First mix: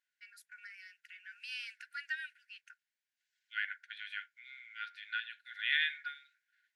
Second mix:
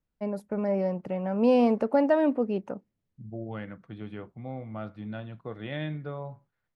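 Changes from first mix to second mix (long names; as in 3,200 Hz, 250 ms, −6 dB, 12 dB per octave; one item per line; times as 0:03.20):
second voice −11.0 dB
master: remove linear-phase brick-wall high-pass 1,400 Hz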